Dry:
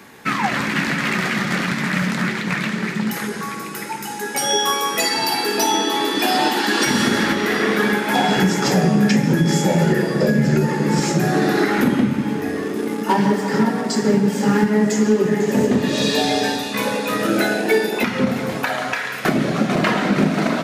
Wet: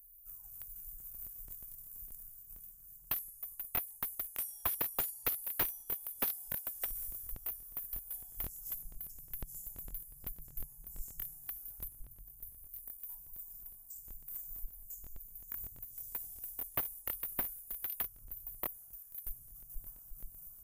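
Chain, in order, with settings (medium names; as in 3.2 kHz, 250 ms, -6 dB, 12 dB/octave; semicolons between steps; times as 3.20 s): inverse Chebyshev band-stop 190–4400 Hz, stop band 80 dB; overdrive pedal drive 15 dB, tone 2.8 kHz, clips at -26 dBFS; crackling interface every 0.12 s, samples 1024, repeat, from 0.98 s; trim +16.5 dB; MP3 96 kbps 44.1 kHz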